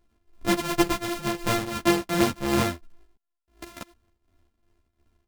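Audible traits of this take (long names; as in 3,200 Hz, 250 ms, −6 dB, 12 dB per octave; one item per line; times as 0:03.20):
a buzz of ramps at a fixed pitch in blocks of 128 samples
tremolo triangle 2.8 Hz, depth 75%
a shimmering, thickened sound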